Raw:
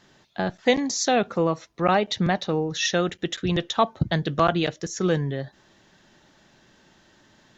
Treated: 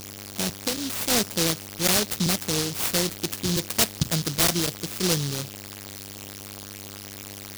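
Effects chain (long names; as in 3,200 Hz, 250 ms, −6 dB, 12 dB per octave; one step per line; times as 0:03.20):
0:00.54–0:01.10: downward compressor 6 to 1, threshold −23 dBFS, peak gain reduction 9 dB
hum with harmonics 100 Hz, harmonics 38, −38 dBFS −2 dB per octave
short delay modulated by noise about 4,600 Hz, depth 0.35 ms
level −1.5 dB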